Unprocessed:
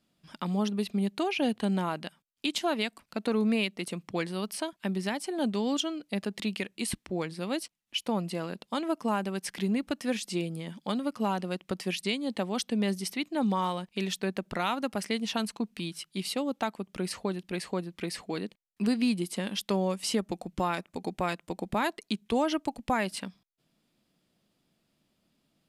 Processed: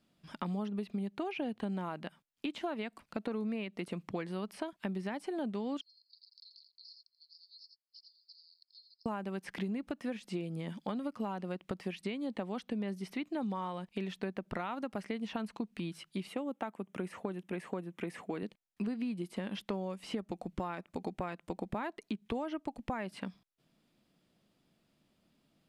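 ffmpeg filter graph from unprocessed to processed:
-filter_complex "[0:a]asettb=1/sr,asplit=3[a][b][c];[a]atrim=end=5.814[d];[b]atrim=start=5.81:end=9.06,asetpts=PTS-STARTPTS,afade=t=in:d=0.004:c=qsin,afade=t=out:st=3.246:d=0.004:c=qsin,asuperpass=centerf=4700:order=8:qfactor=4.7,aecho=1:1:84:0.282,atrim=end_sample=143325[e];[c]atrim=start=9.056[f];[d][e]acrossfade=d=0.004:c1=hsin:c2=qsin[g];[g][f]acrossfade=d=0.004:c1=qsin:c2=hsin,asettb=1/sr,asplit=3[h][i][j];[h]atrim=end=16.274[k];[i]atrim=start=16.27:end=18.43,asetpts=PTS-STARTPTS,afade=t=in:d=0.004:c=qsin,afade=t=out:st=2.156:d=0.004:c=qsin,highpass=140,equalizer=f=4.5k:t=o:w=0.56:g=-13[l];[j]atrim=start=18.426[m];[k][l]acrossfade=d=0.004:c1=hsin:c2=qsin[n];[n][m]acrossfade=d=0.004:c1=qsin:c2=hsin,acrossover=split=2600[o][p];[p]acompressor=threshold=-49dB:ratio=4:attack=1:release=60[q];[o][q]amix=inputs=2:normalize=0,highshelf=f=4.4k:g=-5.5,acompressor=threshold=-35dB:ratio=6,volume=1dB"

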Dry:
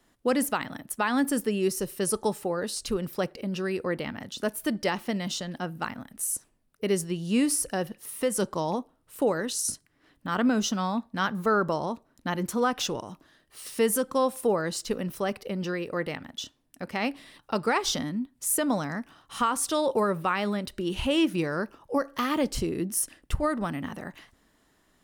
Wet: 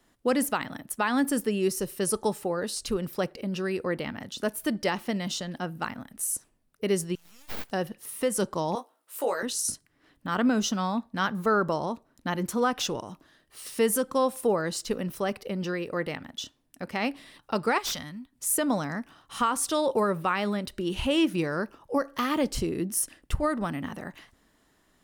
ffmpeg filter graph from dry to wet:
-filter_complex "[0:a]asettb=1/sr,asplit=3[a][b][c];[a]atrim=end=7.154[d];[b]atrim=start=7.15:end=7.71,asetpts=PTS-STARTPTS,afade=t=in:d=0.004:c=qsin,afade=t=out:st=0.556:d=0.004:c=qsin,acompressor=threshold=-34dB:ratio=2.5:attack=3.2:release=140:knee=1:detection=peak,aderivative,aeval=exprs='abs(val(0))':c=same[e];[c]atrim=start=7.706[f];[d][e]acrossfade=d=0.004:c1=hsin:c2=qsin[g];[g][f]acrossfade=d=0.004:c1=qsin:c2=hsin,asettb=1/sr,asplit=3[h][i][j];[h]atrim=end=8.754[k];[i]atrim=start=8.75:end=9.43,asetpts=PTS-STARTPTS,afade=t=in:d=0.004:c=qsin,afade=t=out:st=0.676:d=0.004:c=qsin,highpass=570,highshelf=f=8.2k:g=6.5,asplit=2[l][m];[m]adelay=17,volume=-3.5dB[n];[l][n]amix=inputs=2:normalize=0,atrim=end_sample=29988[o];[j]atrim=start=9.426[p];[k][o]acrossfade=d=0.004:c1=hsin:c2=qsin[q];[q][p]acrossfade=d=0.004:c1=qsin:c2=hsin,asettb=1/sr,asplit=3[r][s][t];[r]atrim=end=17.784[u];[s]atrim=start=17.78:end=18.33,asetpts=PTS-STARTPTS,afade=t=in:d=0.004:c=qsin,afade=t=out:st=0.546:d=0.004:c=qsin,equalizer=f=330:t=o:w=2:g=-13.5,aeval=exprs='0.0562*(abs(mod(val(0)/0.0562+3,4)-2)-1)':c=same[v];[t]atrim=start=18.326[w];[u][v]acrossfade=d=0.004:c1=hsin:c2=qsin[x];[x][w]acrossfade=d=0.004:c1=qsin:c2=hsin"

